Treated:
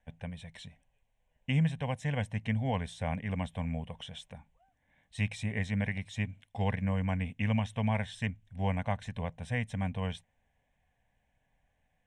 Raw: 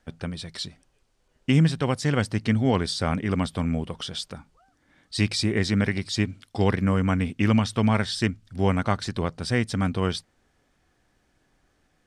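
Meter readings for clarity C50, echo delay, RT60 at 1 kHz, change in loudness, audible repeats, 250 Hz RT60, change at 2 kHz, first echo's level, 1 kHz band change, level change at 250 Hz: no reverb, no echo, no reverb, -9.0 dB, no echo, no reverb, -7.5 dB, no echo, -8.5 dB, -11.0 dB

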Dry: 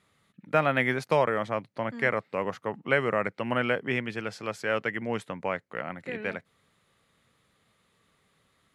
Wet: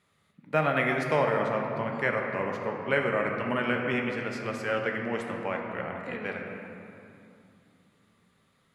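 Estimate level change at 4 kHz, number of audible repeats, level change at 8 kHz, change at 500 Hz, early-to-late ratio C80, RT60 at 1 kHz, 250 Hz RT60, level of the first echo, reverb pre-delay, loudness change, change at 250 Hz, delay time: -1.5 dB, no echo, no reading, 0.0 dB, 3.5 dB, 2.7 s, 3.7 s, no echo, 5 ms, 0.0 dB, +1.0 dB, no echo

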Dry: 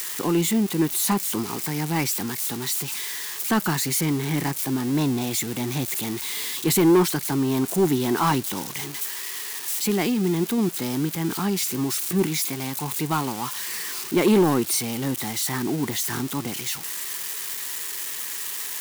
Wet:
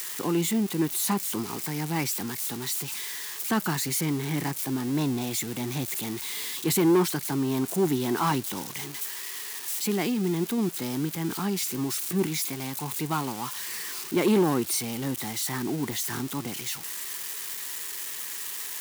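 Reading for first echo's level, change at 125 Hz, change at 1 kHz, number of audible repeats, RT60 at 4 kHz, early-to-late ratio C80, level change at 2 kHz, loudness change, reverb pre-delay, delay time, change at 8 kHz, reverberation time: no echo, -4.0 dB, -4.0 dB, no echo, no reverb, no reverb, -4.0 dB, -4.0 dB, no reverb, no echo, -4.0 dB, no reverb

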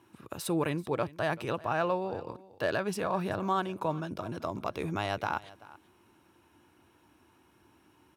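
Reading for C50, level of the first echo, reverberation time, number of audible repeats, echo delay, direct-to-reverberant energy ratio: no reverb, -20.0 dB, no reverb, 1, 384 ms, no reverb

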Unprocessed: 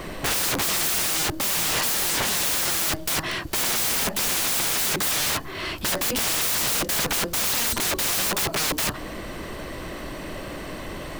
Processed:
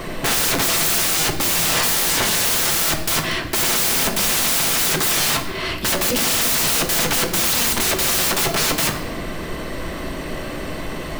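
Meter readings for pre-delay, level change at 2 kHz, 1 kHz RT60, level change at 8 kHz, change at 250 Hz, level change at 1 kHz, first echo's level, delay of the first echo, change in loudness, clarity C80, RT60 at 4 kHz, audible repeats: 4 ms, +5.5 dB, 0.90 s, +5.0 dB, +6.5 dB, +5.5 dB, no echo, no echo, +5.0 dB, 11.0 dB, 0.80 s, no echo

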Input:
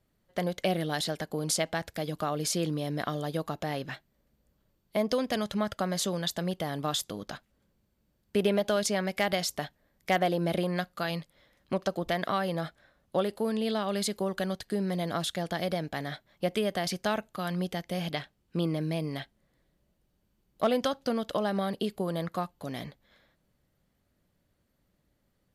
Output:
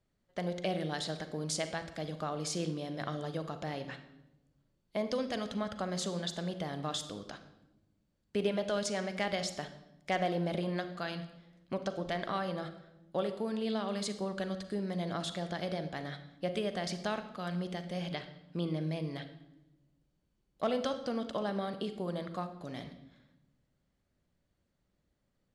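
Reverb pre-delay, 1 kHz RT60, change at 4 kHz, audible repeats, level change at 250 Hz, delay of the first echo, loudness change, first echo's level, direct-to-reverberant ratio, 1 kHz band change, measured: 39 ms, 0.75 s, -5.5 dB, no echo, -5.0 dB, no echo, -5.5 dB, no echo, 9.0 dB, -5.5 dB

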